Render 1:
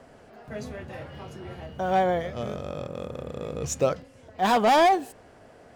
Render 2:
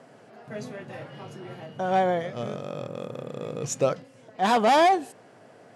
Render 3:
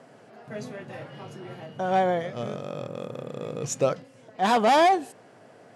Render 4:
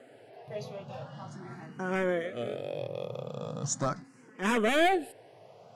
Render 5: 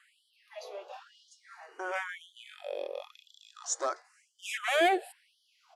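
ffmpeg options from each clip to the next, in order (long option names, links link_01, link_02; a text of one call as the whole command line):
ffmpeg -i in.wav -af "afftfilt=real='re*between(b*sr/4096,100,12000)':imag='im*between(b*sr/4096,100,12000)':win_size=4096:overlap=0.75" out.wav
ffmpeg -i in.wav -af anull out.wav
ffmpeg -i in.wav -filter_complex "[0:a]aeval=exprs='clip(val(0),-1,0.112)':channel_layout=same,asplit=2[link_01][link_02];[link_02]afreqshift=0.41[link_03];[link_01][link_03]amix=inputs=2:normalize=1" out.wav
ffmpeg -i in.wav -af "aresample=32000,aresample=44100,bandreject=frequency=93.31:width_type=h:width=4,bandreject=frequency=186.62:width_type=h:width=4,bandreject=frequency=279.93:width_type=h:width=4,bandreject=frequency=373.24:width_type=h:width=4,bandreject=frequency=466.55:width_type=h:width=4,afftfilt=real='re*gte(b*sr/1024,300*pow(3000/300,0.5+0.5*sin(2*PI*0.97*pts/sr)))':imag='im*gte(b*sr/1024,300*pow(3000/300,0.5+0.5*sin(2*PI*0.97*pts/sr)))':win_size=1024:overlap=0.75" out.wav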